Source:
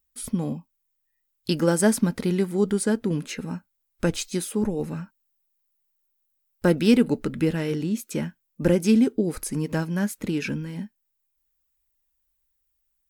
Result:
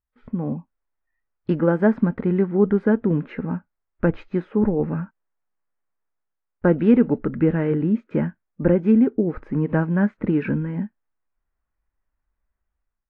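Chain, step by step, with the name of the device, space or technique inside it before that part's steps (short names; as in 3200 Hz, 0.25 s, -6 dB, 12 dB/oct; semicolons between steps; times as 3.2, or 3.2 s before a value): action camera in a waterproof case (LPF 1800 Hz 24 dB/oct; AGC gain up to 10.5 dB; gain -3.5 dB; AAC 48 kbps 24000 Hz)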